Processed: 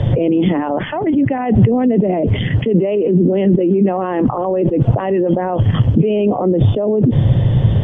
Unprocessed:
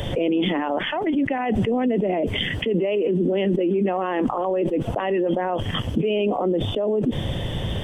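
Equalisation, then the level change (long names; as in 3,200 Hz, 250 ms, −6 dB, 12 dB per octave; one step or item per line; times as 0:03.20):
low-pass filter 1,200 Hz 6 dB per octave
high-frequency loss of the air 57 metres
parametric band 120 Hz +13 dB 0.91 octaves
+6.0 dB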